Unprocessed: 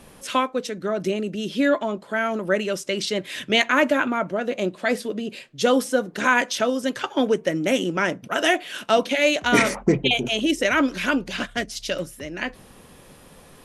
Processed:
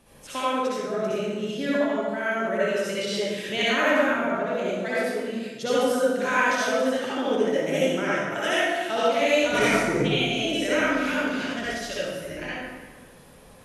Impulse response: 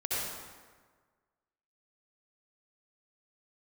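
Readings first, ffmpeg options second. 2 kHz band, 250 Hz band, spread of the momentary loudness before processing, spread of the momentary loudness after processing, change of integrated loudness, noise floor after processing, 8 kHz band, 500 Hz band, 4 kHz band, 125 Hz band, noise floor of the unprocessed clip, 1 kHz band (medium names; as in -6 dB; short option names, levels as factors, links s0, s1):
-2.0 dB, -3.0 dB, 9 LU, 9 LU, -2.0 dB, -49 dBFS, -3.5 dB, -0.5 dB, -3.0 dB, -2.0 dB, -49 dBFS, -2.0 dB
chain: -filter_complex "[1:a]atrim=start_sample=2205,asetrate=48510,aresample=44100[s0];[0:a][s0]afir=irnorm=-1:irlink=0,volume=0.398"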